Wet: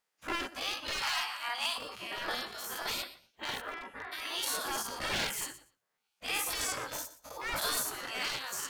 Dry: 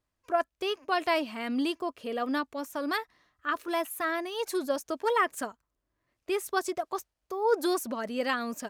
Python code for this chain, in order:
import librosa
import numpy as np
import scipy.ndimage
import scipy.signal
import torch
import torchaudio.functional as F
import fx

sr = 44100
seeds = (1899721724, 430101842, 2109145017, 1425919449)

y = fx.spec_dilate(x, sr, span_ms=120)
y = fx.lowpass(y, sr, hz=1200.0, slope=12, at=(3.6, 4.11), fade=0.02)
y = fx.echo_feedback(y, sr, ms=120, feedback_pct=16, wet_db=-15.5)
y = np.clip(y, -10.0 ** (-21.0 / 20.0), 10.0 ** (-21.0 / 20.0))
y = fx.spec_gate(y, sr, threshold_db=-15, keep='weak')
y = fx.low_shelf_res(y, sr, hz=610.0, db=-11.5, q=3.0, at=(1.02, 1.78))